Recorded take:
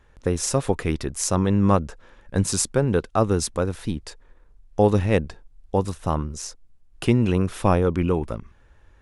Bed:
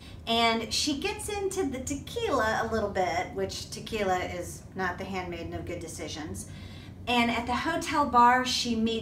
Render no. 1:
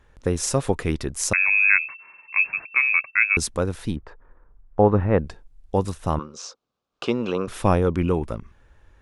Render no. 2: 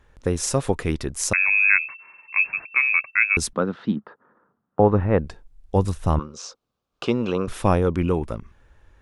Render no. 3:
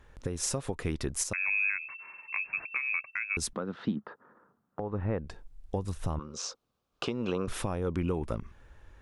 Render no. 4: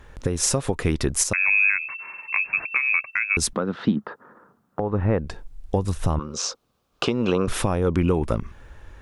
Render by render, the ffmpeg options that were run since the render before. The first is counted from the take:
-filter_complex "[0:a]asettb=1/sr,asplit=3[s0][s1][s2];[s0]atrim=end=1.334[s3];[s1]atrim=start=1.33:end=3.37,asetpts=PTS-STARTPTS,afade=t=in:d=0.004:c=qsin,afade=t=out:st=2.036:d=0.004:c=qsin,lowpass=f=2300:t=q:w=0.5098,lowpass=f=2300:t=q:w=0.6013,lowpass=f=2300:t=q:w=0.9,lowpass=f=2300:t=q:w=2.563,afreqshift=-2700[s4];[s2]atrim=start=3.366[s5];[s3][s4]acrossfade=d=0.004:c1=hsin:c2=qsin[s6];[s6][s5]acrossfade=d=0.004:c1=qsin:c2=hsin,asettb=1/sr,asplit=3[s7][s8][s9];[s7]atrim=end=3.964[s10];[s8]atrim=start=3.96:end=5.19,asetpts=PTS-STARTPTS,afade=t=in:d=0.004:c=qsin,afade=t=out:st=1.226:d=0.004:c=qsin,lowpass=f=1300:t=q:w=1.6[s11];[s9]atrim=start=5.186[s12];[s10][s11]acrossfade=d=0.004:c1=hsin:c2=qsin[s13];[s13][s12]acrossfade=d=0.004:c1=qsin:c2=hsin,asettb=1/sr,asplit=3[s14][s15][s16];[s14]atrim=end=6.194[s17];[s15]atrim=start=6.19:end=7.48,asetpts=PTS-STARTPTS,afade=t=in:d=0.004:c=qsin,afade=t=out:st=1.286:d=0.004:c=qsin,highpass=290,equalizer=f=320:t=q:w=4:g=-4,equalizer=f=510:t=q:w=4:g=6,equalizer=f=1200:t=q:w=4:g=9,equalizer=f=1900:t=q:w=4:g=-9,equalizer=f=3700:t=q:w=4:g=3,lowpass=f=6200:w=0.5412,lowpass=f=6200:w=1.3066[s18];[s16]atrim=start=7.476[s19];[s17][s18]acrossfade=d=0.004:c1=hsin:c2=qsin[s20];[s20][s19]acrossfade=d=0.004:c1=qsin:c2=hsin"
-filter_complex "[0:a]asettb=1/sr,asplit=3[s0][s1][s2];[s0]atrim=end=3.534[s3];[s1]atrim=start=3.53:end=4.8,asetpts=PTS-STARTPTS,afade=t=in:d=0.004:c=qsin,afade=t=out:st=1.266:d=0.004:c=qsin,highpass=f=150:w=0.5412,highpass=f=150:w=1.3066,equalizer=f=210:t=q:w=4:g=9,equalizer=f=1300:t=q:w=4:g=7,equalizer=f=2400:t=q:w=4:g=-8,lowpass=f=3700:w=0.5412,lowpass=f=3700:w=1.3066[s4];[s2]atrim=start=4.796[s5];[s3][s4]acrossfade=d=0.004:c1=hsin:c2=qsin[s6];[s6][s5]acrossfade=d=0.004:c1=qsin:c2=hsin,asettb=1/sr,asplit=3[s7][s8][s9];[s7]atrim=end=5.754[s10];[s8]atrim=start=5.75:end=7.54,asetpts=PTS-STARTPTS,afade=t=in:d=0.004:c=qsin,afade=t=out:st=1.786:d=0.004:c=qsin,lowshelf=f=120:g=9.5[s11];[s9]atrim=start=7.536[s12];[s10][s11]acrossfade=d=0.004:c1=hsin:c2=qsin[s13];[s13][s12]acrossfade=d=0.004:c1=qsin:c2=hsin"
-af "acompressor=threshold=0.0631:ratio=10,alimiter=limit=0.106:level=0:latency=1:release=312"
-af "volume=3.16"

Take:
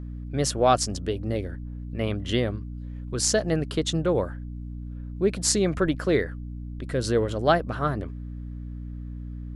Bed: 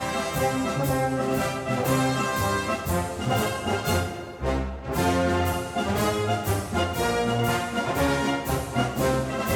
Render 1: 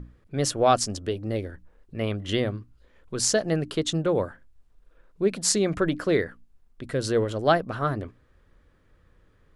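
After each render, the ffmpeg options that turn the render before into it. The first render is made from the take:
-af "bandreject=f=60:t=h:w=6,bandreject=f=120:t=h:w=6,bandreject=f=180:t=h:w=6,bandreject=f=240:t=h:w=6,bandreject=f=300:t=h:w=6"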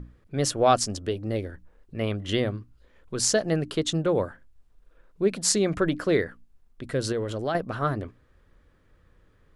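-filter_complex "[0:a]asettb=1/sr,asplit=3[s0][s1][s2];[s0]atrim=end=7.124[s3];[s1]atrim=start=7.12:end=7.55,asetpts=PTS-STARTPTS,afade=t=in:d=0.004:c=qsin,afade=t=out:st=0.426:d=0.004:c=qsin,acompressor=threshold=0.0501:ratio=3:attack=3.2:release=140:knee=1:detection=peak[s4];[s2]atrim=start=7.546[s5];[s3][s4]acrossfade=d=0.004:c1=hsin:c2=qsin[s6];[s6][s5]acrossfade=d=0.004:c1=qsin:c2=hsin"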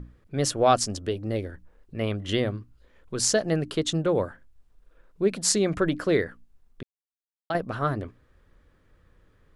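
-filter_complex "[0:a]asplit=3[s0][s1][s2];[s0]atrim=end=6.83,asetpts=PTS-STARTPTS,afade=t=out:st=6.826:d=0.004:c=hsin[s3];[s1]atrim=start=6.83:end=7.5,asetpts=PTS-STARTPTS,volume=0[s4];[s2]atrim=start=7.5,asetpts=PTS-STARTPTS,afade=t=in:d=0.004:c=hsin[s5];[s3][s4][s5]concat=n=3:v=0:a=1"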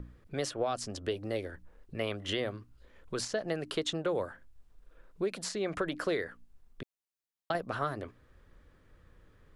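-filter_complex "[0:a]alimiter=limit=0.178:level=0:latency=1:release=279,acrossover=split=390|3800[s0][s1][s2];[s0]acompressor=threshold=0.00794:ratio=4[s3];[s1]acompressor=threshold=0.0316:ratio=4[s4];[s2]acompressor=threshold=0.00631:ratio=4[s5];[s3][s4][s5]amix=inputs=3:normalize=0"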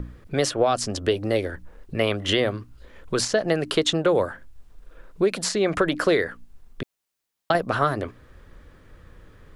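-af "volume=3.76"

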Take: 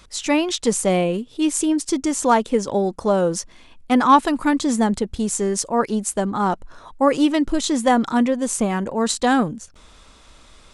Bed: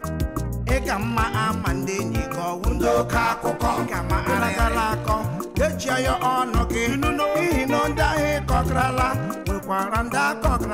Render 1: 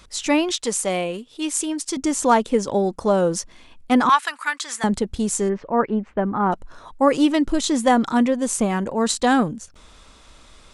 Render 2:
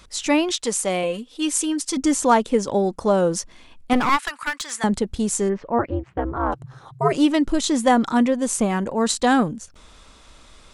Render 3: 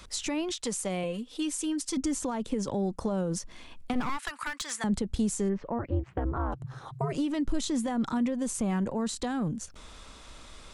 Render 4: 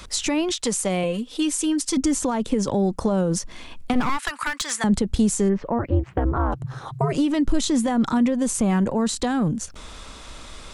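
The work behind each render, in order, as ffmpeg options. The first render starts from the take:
-filter_complex "[0:a]asettb=1/sr,asplit=3[s0][s1][s2];[s0]atrim=end=0.524[s3];[s1]atrim=start=0.52:end=1.97,asetpts=PTS-STARTPTS,afade=t=in:d=0.004:c=qsin,afade=t=out:st=1.446:d=0.004:c=qsin,lowshelf=f=440:g=-10.5[s4];[s2]atrim=start=1.966[s5];[s3][s4]acrossfade=d=0.004:c1=hsin:c2=qsin[s6];[s6][s5]acrossfade=d=0.004:c1=qsin:c2=hsin,asettb=1/sr,asplit=3[s7][s8][s9];[s7]atrim=end=4.094[s10];[s8]atrim=start=4.09:end=4.84,asetpts=PTS-STARTPTS,afade=t=in:d=0.004:c=qsin,afade=t=out:st=0.746:d=0.004:c=qsin,highpass=f=1500:t=q:w=1.6[s11];[s9]atrim=start=4.836[s12];[s10][s11]acrossfade=d=0.004:c1=hsin:c2=qsin[s13];[s13][s12]acrossfade=d=0.004:c1=qsin:c2=hsin,asplit=3[s14][s15][s16];[s14]afade=t=out:st=5.48:d=0.02[s17];[s15]lowpass=f=2300:w=0.5412,lowpass=f=2300:w=1.3066,afade=t=in:st=5.48:d=0.02,afade=t=out:st=6.51:d=0.02[s18];[s16]afade=t=in:st=6.51:d=0.02[s19];[s17][s18][s19]amix=inputs=3:normalize=0"
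-filter_complex "[0:a]asettb=1/sr,asplit=3[s0][s1][s2];[s0]atrim=end=1.034[s3];[s1]atrim=start=1.03:end=2.17,asetpts=PTS-STARTPTS,afade=t=in:d=0.004:c=qsin,afade=t=out:st=1.136:d=0.004:c=qsin,aecho=1:1:3.9:0.65,atrim=end_sample=50274[s4];[s2]atrim=start=2.166[s5];[s3][s4]acrossfade=d=0.004:c1=hsin:c2=qsin[s6];[s6][s5]acrossfade=d=0.004:c1=qsin:c2=hsin,asettb=1/sr,asplit=3[s7][s8][s9];[s7]atrim=end=3.934[s10];[s8]atrim=start=3.93:end=4.71,asetpts=PTS-STARTPTS,afade=t=in:d=0.004:c=qsin,afade=t=out:st=0.776:d=0.004:c=qsin,aeval=exprs='clip(val(0),-1,0.0562)':c=same[s11];[s9]atrim=start=4.706[s12];[s10][s11]acrossfade=d=0.004:c1=hsin:c2=qsin[s13];[s13][s12]acrossfade=d=0.004:c1=qsin:c2=hsin,asplit=3[s14][s15][s16];[s14]afade=t=out:st=5.78:d=0.02[s17];[s15]aeval=exprs='val(0)*sin(2*PI*130*n/s)':c=same,afade=t=in:st=5.78:d=0.02,afade=t=out:st=7.15:d=0.02[s18];[s16]afade=t=in:st=7.15:d=0.02[s19];[s17][s18][s19]amix=inputs=3:normalize=0"
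-filter_complex "[0:a]alimiter=limit=0.188:level=0:latency=1:release=47,acrossover=split=200[s0][s1];[s1]acompressor=threshold=0.0251:ratio=5[s2];[s0][s2]amix=inputs=2:normalize=0"
-af "volume=2.66"

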